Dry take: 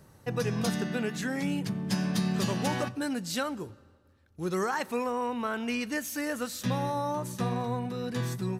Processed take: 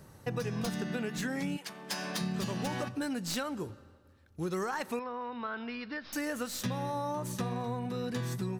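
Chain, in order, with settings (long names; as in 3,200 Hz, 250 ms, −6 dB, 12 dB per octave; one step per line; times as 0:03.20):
stylus tracing distortion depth 0.036 ms
0:01.56–0:02.20: high-pass filter 890 Hz → 370 Hz 12 dB per octave
downward compressor, threshold −33 dBFS, peak gain reduction 9 dB
0:04.99–0:06.13: Chebyshev low-pass with heavy ripple 5,300 Hz, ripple 6 dB
level +2 dB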